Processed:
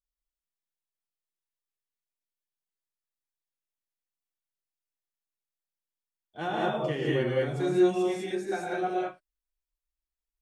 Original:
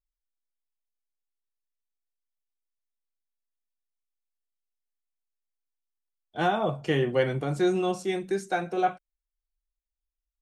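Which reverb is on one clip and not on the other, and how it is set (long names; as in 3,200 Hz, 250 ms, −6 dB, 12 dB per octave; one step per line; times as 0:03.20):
reverb whose tail is shaped and stops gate 230 ms rising, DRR −4.5 dB
level −8.5 dB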